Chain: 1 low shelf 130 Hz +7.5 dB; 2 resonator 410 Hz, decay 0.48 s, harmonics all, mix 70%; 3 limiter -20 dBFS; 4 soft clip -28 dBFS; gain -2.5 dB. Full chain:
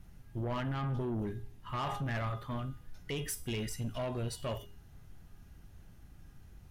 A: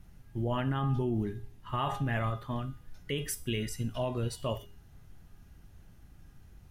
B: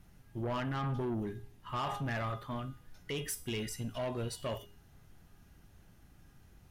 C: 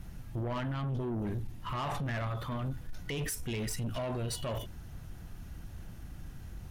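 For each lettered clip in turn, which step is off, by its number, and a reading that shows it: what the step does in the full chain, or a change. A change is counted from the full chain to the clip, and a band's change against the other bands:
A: 4, distortion -12 dB; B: 1, 125 Hz band -3.0 dB; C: 2, crest factor change -2.0 dB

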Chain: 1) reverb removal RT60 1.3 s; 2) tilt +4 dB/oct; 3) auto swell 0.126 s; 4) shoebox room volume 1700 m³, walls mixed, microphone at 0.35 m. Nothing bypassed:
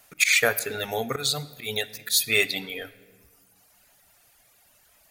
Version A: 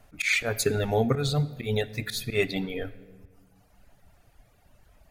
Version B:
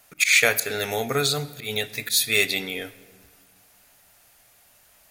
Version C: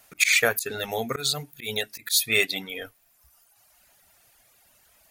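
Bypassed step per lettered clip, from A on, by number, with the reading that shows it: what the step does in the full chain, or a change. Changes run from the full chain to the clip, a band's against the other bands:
2, 125 Hz band +14.5 dB; 1, 125 Hz band +2.5 dB; 4, echo-to-direct -14.0 dB to none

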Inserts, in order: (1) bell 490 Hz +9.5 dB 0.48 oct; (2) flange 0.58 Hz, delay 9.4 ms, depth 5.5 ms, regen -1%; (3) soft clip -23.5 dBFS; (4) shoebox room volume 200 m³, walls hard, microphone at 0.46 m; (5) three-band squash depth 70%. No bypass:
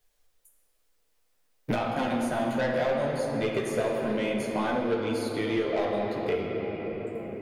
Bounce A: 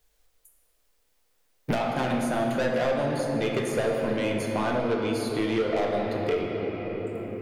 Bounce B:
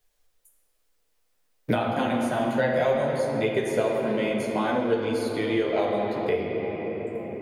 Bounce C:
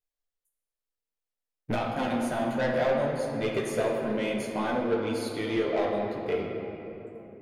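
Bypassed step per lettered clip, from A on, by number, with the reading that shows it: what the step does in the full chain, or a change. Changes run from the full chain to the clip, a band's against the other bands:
2, 125 Hz band +2.0 dB; 3, distortion -11 dB; 5, momentary loudness spread change +4 LU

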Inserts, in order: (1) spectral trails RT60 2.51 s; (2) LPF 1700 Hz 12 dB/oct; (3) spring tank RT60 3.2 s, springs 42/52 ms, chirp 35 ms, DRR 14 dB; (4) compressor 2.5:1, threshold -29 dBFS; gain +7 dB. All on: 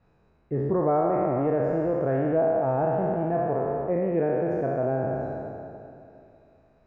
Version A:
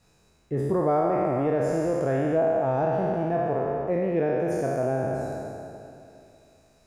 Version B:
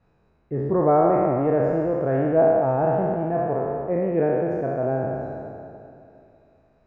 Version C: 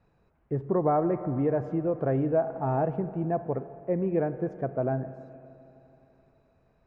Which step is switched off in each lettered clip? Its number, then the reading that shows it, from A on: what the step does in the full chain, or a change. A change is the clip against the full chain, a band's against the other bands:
2, 2 kHz band +3.0 dB; 4, loudness change +3.5 LU; 1, 125 Hz band +3.5 dB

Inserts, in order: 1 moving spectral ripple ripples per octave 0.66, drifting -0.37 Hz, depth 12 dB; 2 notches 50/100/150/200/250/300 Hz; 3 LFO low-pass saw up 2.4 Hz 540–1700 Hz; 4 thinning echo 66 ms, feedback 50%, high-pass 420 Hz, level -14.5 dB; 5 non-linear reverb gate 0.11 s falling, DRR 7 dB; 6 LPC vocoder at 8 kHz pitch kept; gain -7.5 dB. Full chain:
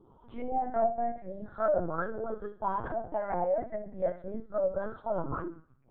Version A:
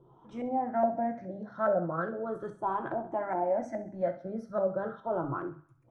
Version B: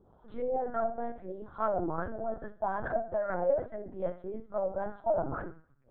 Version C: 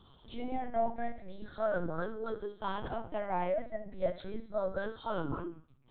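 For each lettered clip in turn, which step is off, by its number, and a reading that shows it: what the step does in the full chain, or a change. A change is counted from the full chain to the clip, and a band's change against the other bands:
6, 250 Hz band +3.0 dB; 1, 2 kHz band +1.5 dB; 3, 1 kHz band -4.0 dB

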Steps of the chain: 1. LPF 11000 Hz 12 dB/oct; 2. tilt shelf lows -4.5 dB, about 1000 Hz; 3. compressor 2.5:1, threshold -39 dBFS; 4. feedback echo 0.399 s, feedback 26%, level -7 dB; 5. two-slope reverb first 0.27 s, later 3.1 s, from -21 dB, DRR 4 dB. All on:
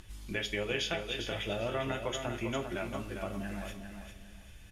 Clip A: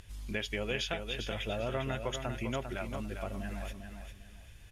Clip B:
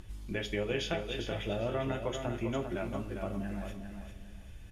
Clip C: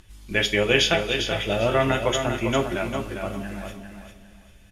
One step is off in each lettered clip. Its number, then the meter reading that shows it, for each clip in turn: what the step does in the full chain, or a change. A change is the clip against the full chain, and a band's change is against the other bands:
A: 5, echo-to-direct -1.5 dB to -6.5 dB; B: 2, crest factor change -2.5 dB; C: 3, mean gain reduction 8.0 dB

